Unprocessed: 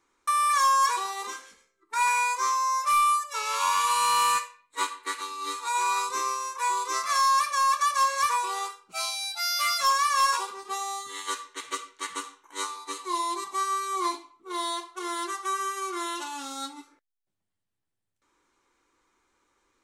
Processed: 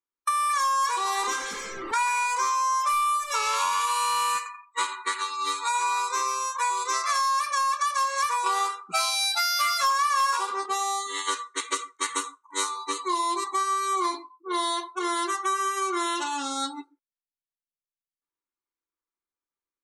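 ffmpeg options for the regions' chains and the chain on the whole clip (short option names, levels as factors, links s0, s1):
-filter_complex "[0:a]asettb=1/sr,asplit=3[s0][s1][s2];[s0]atrim=end=0.784[s3];[s1]atrim=start=0.78:end=3.86,asetpts=PTS-STARTPTS,afade=t=in:d=0.004:c=qsin,afade=t=out:st=3.076:d=0.004:c=qsin,aeval=exprs='val(0)+0.5*0.0178*sgn(val(0))':c=same,aecho=1:1:285:0.15,atrim=end_sample=135828[s4];[s2]atrim=start=3.856[s5];[s3][s4]acrossfade=d=0.004:c1=hsin:c2=qsin[s6];[s6][s5]acrossfade=d=0.004:c1=qsin:c2=hsin,asettb=1/sr,asplit=3[s7][s8][s9];[s7]atrim=end=4.374[s10];[s8]atrim=start=4.37:end=7.02,asetpts=PTS-STARTPTS,afade=t=in:d=0.004:c=qsin,afade=t=out:st=2.646:d=0.004:c=qsin,equalizer=f=190:w=0.86:g=-12.5,asplit=2[s11][s12];[s12]adelay=86,lowpass=f=3500:p=1,volume=0.299,asplit=2[s13][s14];[s14]adelay=86,lowpass=f=3500:p=1,volume=0.44,asplit=2[s15][s16];[s16]adelay=86,lowpass=f=3500:p=1,volume=0.44,asplit=2[s17][s18];[s18]adelay=86,lowpass=f=3500:p=1,volume=0.44,asplit=2[s19][s20];[s20]adelay=86,lowpass=f=3500:p=1,volume=0.44[s21];[s11][s13][s15][s17][s19][s21]amix=inputs=6:normalize=0,atrim=end_sample=116865[s22];[s9]atrim=start=7.016[s23];[s10][s22]acrossfade=d=0.004:c1=hsin:c2=qsin[s24];[s24][s23]acrossfade=d=0.004:c1=qsin:c2=hsin,asettb=1/sr,asplit=3[s25][s26][s27];[s25]atrim=end=8.464[s28];[s26]atrim=start=8.46:end=10.66,asetpts=PTS-STARTPTS,afade=t=in:d=0.004:c=qsin,afade=t=out:st=2.196:d=0.004:c=qsin,equalizer=f=1300:w=1.7:g=4.5,acontrast=74[s29];[s27]atrim=start=10.656[s30];[s28][s29]acrossfade=d=0.004:c1=hsin:c2=qsin[s31];[s31][s30]acrossfade=d=0.004:c1=qsin:c2=hsin,asettb=1/sr,asplit=3[s32][s33][s34];[s32]atrim=end=11.464[s35];[s33]atrim=start=11.46:end=12.69,asetpts=PTS-STARTPTS,afade=t=in:d=0.004:c=qsin,afade=t=out:st=1.226:d=0.004:c=qsin,highshelf=f=5100:g=5,bandreject=f=3000:w=17[s36];[s34]atrim=start=12.686[s37];[s35][s36]acrossfade=d=0.004:c1=hsin:c2=qsin[s38];[s38][s37]acrossfade=d=0.004:c1=qsin:c2=hsin,afftdn=nr=35:nf=-45,acompressor=threshold=0.0316:ratio=6,volume=2.24"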